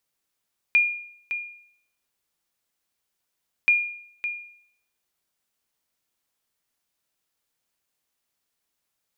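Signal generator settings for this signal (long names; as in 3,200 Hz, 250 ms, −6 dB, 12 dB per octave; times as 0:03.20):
ping with an echo 2,420 Hz, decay 0.64 s, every 2.93 s, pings 2, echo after 0.56 s, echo −10.5 dB −12 dBFS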